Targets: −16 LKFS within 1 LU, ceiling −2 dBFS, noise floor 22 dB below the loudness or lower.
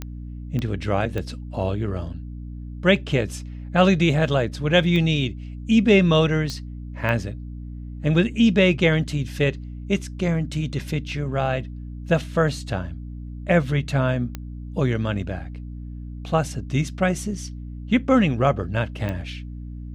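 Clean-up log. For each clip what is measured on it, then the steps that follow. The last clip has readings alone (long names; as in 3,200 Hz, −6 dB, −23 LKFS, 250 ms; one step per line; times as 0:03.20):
number of clicks 8; mains hum 60 Hz; hum harmonics up to 300 Hz; level of the hum −32 dBFS; integrated loudness −22.5 LKFS; sample peak −4.5 dBFS; target loudness −16.0 LKFS
→ click removal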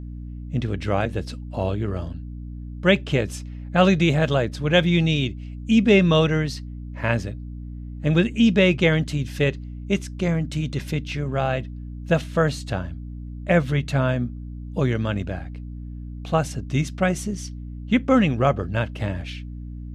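number of clicks 0; mains hum 60 Hz; hum harmonics up to 300 Hz; level of the hum −32 dBFS
→ mains-hum notches 60/120/180/240/300 Hz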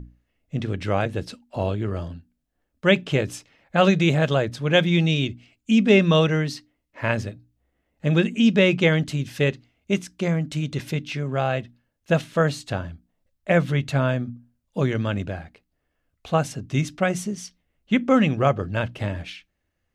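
mains hum none found; integrated loudness −23.0 LKFS; sample peak −5.0 dBFS; target loudness −16.0 LKFS
→ level +7 dB
brickwall limiter −2 dBFS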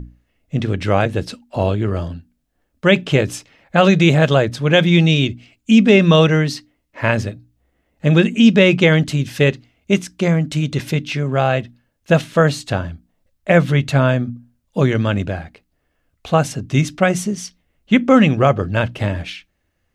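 integrated loudness −16.5 LKFS; sample peak −2.0 dBFS; background noise floor −69 dBFS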